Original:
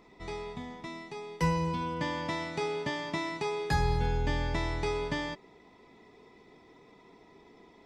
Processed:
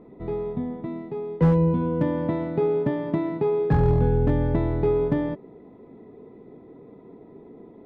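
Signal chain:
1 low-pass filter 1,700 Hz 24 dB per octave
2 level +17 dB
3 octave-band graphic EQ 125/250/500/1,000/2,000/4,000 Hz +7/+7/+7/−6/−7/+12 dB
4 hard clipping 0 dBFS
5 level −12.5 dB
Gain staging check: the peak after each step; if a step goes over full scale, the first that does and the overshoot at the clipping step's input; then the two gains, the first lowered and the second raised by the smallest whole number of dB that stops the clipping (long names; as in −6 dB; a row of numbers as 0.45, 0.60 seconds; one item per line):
−16.0, +1.0, +5.0, 0.0, −12.5 dBFS
step 2, 5.0 dB
step 2 +12 dB, step 5 −7.5 dB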